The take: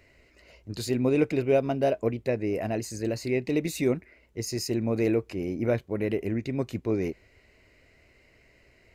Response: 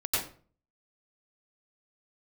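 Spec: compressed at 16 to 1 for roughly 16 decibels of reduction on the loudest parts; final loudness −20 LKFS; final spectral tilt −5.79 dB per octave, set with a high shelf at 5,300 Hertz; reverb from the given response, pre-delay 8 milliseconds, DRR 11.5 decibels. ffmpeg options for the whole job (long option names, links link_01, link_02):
-filter_complex "[0:a]highshelf=frequency=5300:gain=-5,acompressor=threshold=-35dB:ratio=16,asplit=2[link_01][link_02];[1:a]atrim=start_sample=2205,adelay=8[link_03];[link_02][link_03]afir=irnorm=-1:irlink=0,volume=-19.5dB[link_04];[link_01][link_04]amix=inputs=2:normalize=0,volume=20dB"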